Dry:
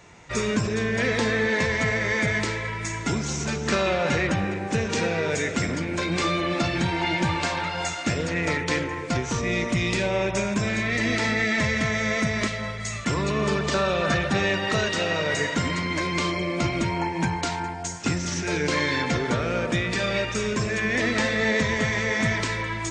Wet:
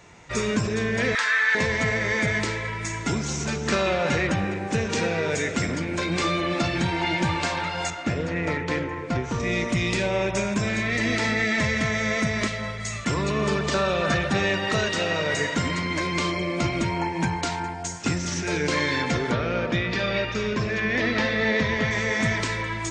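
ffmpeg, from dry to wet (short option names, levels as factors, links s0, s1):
-filter_complex "[0:a]asettb=1/sr,asplit=3[s0][s1][s2];[s0]atrim=end=1.154[s3];[s1]atrim=start=1.15:end=1.55,asetpts=PTS-STARTPTS,afade=t=in:d=0.004:c=qsin,afade=t=out:st=0.396:d=0.004:c=qsin,highpass=f=1400:t=q:w=2.9[s4];[s2]atrim=start=1.546[s5];[s3][s4]acrossfade=d=0.004:c1=hsin:c2=qsin[s6];[s6][s5]acrossfade=d=0.004:c1=qsin:c2=hsin,asettb=1/sr,asplit=3[s7][s8][s9];[s7]atrim=end=7.904[s10];[s8]atrim=start=7.9:end=9.4,asetpts=PTS-STARTPTS,afade=t=in:d=0.004:c=qsin,afade=t=out:st=1.496:d=0.004:c=qsin,lowpass=f=2000:p=1[s11];[s9]atrim=start=9.396[s12];[s10][s11]acrossfade=d=0.004:c1=hsin:c2=qsin[s13];[s13][s12]acrossfade=d=0.004:c1=qsin:c2=hsin,asettb=1/sr,asplit=3[s14][s15][s16];[s14]atrim=end=19.314[s17];[s15]atrim=start=19.31:end=21.91,asetpts=PTS-STARTPTS,afade=t=in:d=0.004:c=qsin,afade=t=out:st=2.596:d=0.004:c=qsin,lowpass=f=5100:w=0.5412,lowpass=f=5100:w=1.3066[s18];[s16]atrim=start=21.906[s19];[s17][s18]acrossfade=d=0.004:c1=hsin:c2=qsin[s20];[s20][s19]acrossfade=d=0.004:c1=qsin:c2=hsin"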